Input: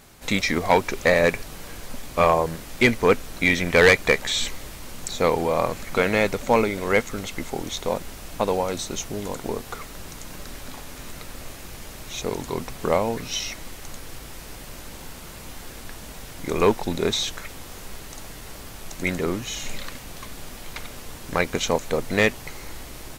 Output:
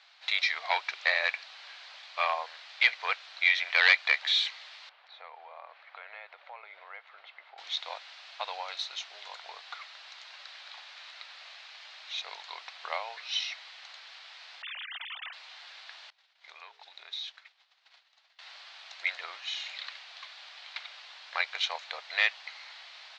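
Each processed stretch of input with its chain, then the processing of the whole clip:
0:04.89–0:07.58: high-pass filter 330 Hz + downward compressor 3 to 1, threshold −27 dBFS + head-to-tape spacing loss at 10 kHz 45 dB
0:14.62–0:15.33: three sine waves on the formant tracks + high-pass filter 990 Hz 6 dB per octave + spectral tilt +2 dB per octave
0:16.10–0:18.39: downward expander −26 dBFS + mains-hum notches 60/120/180/240/300/360/420/480 Hz + downward compressor 5 to 1, threshold −34 dBFS
whole clip: elliptic band-pass filter 690–4,200 Hz, stop band 50 dB; tilt shelving filter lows −8.5 dB, about 1,500 Hz; level −5.5 dB

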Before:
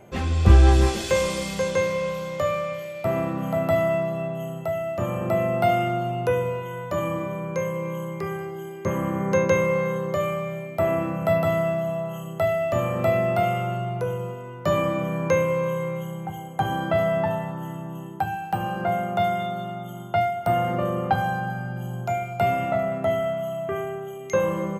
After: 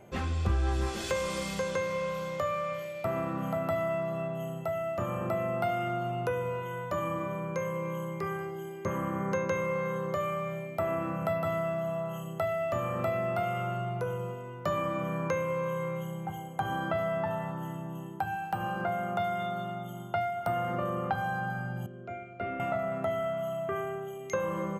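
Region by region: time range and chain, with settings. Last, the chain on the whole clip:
0:21.86–0:22.60: low-pass filter 1,700 Hz + phaser with its sweep stopped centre 350 Hz, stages 4
whole clip: dynamic equaliser 1,300 Hz, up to +6 dB, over −42 dBFS, Q 1.8; downward compressor 2.5 to 1, threshold −25 dBFS; level −4.5 dB

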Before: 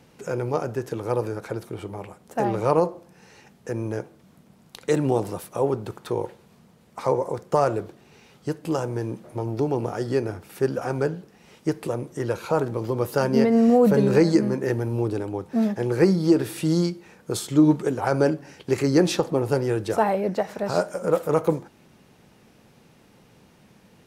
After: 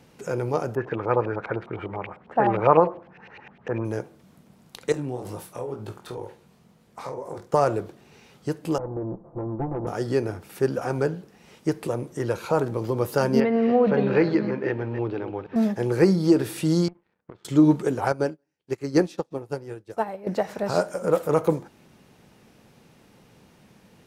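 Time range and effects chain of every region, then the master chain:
0:00.75–0:03.85: parametric band 2,400 Hz +5 dB 1.9 octaves + auto-filter low-pass saw up 9.9 Hz 720–3,000 Hz
0:04.92–0:07.54: downward compressor 5 to 1, threshold −26 dBFS + chorus effect 2.1 Hz, delay 18.5 ms, depth 5.6 ms + double-tracking delay 48 ms −12 dB
0:08.78–0:09.87: lower of the sound and its delayed copy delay 5.9 ms + low-pass filter 1,000 Hz 24 dB per octave + tube saturation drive 20 dB, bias 0.35
0:13.40–0:15.56: delay that plays each chunk backwards 159 ms, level −10.5 dB + low-pass filter 3,100 Hz 24 dB per octave + spectral tilt +2 dB per octave
0:16.88–0:17.45: low-pass filter 2,200 Hz 24 dB per octave + downward compressor 12 to 1, threshold −31 dBFS + power curve on the samples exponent 2
0:18.12–0:20.27: single-tap delay 175 ms −22 dB + expander for the loud parts 2.5 to 1, over −39 dBFS
whole clip: no processing

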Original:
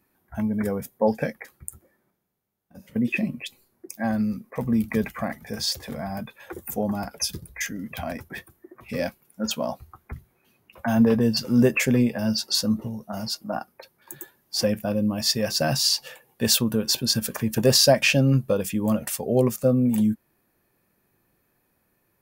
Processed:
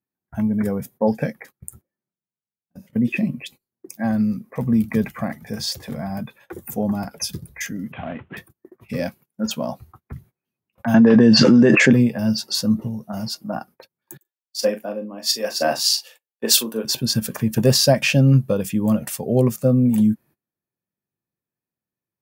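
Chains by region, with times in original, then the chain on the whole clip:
0:07.92–0:08.37: variable-slope delta modulation 16 kbit/s + low-shelf EQ 66 Hz −10.5 dB
0:10.94–0:11.93: loudspeaker in its box 190–6,300 Hz, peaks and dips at 320 Hz +4 dB, 1,700 Hz +7 dB, 5,200 Hz −4 dB + envelope flattener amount 100%
0:14.17–0:16.85: high-pass filter 290 Hz 24 dB per octave + double-tracking delay 40 ms −8 dB + multiband upward and downward expander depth 100%
whole clip: parametric band 130 Hz +9 dB 2 octaves; noise gate −43 dBFS, range −24 dB; low-shelf EQ 76 Hz −10.5 dB

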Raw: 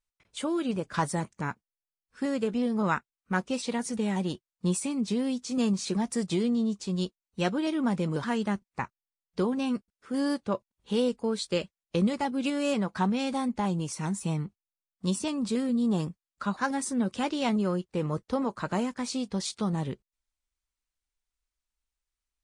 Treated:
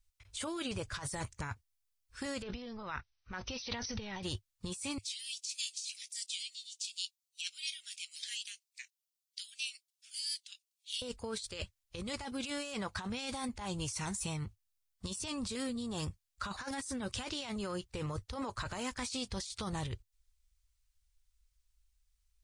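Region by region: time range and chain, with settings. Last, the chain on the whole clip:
0:02.42–0:04.23: compressor whose output falls as the input rises −35 dBFS + linear-phase brick-wall low-pass 6,200 Hz
0:04.98–0:11.02: Butterworth high-pass 2,400 Hz + phaser whose notches keep moving one way falling 1.9 Hz
whole clip: drawn EQ curve 100 Hz 0 dB, 170 Hz −27 dB, 4,700 Hz −9 dB; compressor whose output falls as the input rises −52 dBFS, ratio −1; level +13 dB

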